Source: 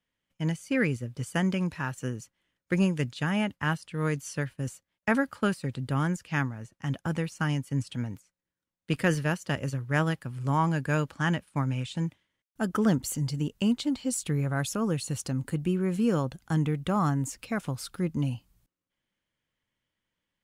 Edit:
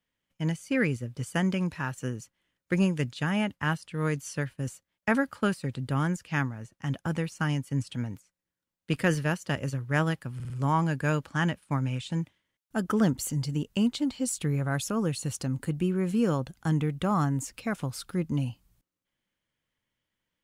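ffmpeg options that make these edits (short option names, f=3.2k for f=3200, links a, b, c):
-filter_complex "[0:a]asplit=4[a][b][c][d];[a]atrim=end=10.402[e];[b]atrim=start=10.348:end=10.402[f];[c]atrim=start=10.348:end=10.402[g];[d]atrim=start=10.348[h];[e][f]acrossfade=d=0.004:c1=hsin:c2=hsin[i];[i][g]acrossfade=d=0.004:c1=hsin:c2=hsin[j];[j][h]acrossfade=d=0.004:c1=hsin:c2=hsin"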